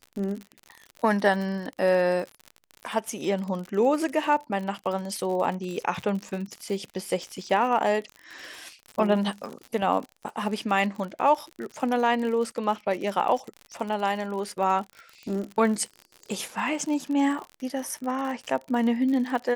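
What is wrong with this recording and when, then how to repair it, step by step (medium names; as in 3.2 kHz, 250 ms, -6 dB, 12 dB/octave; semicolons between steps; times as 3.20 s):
crackle 58 per s -32 dBFS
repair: de-click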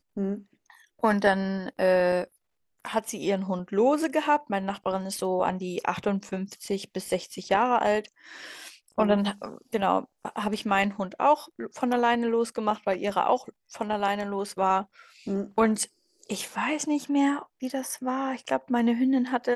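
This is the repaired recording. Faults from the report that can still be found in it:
nothing left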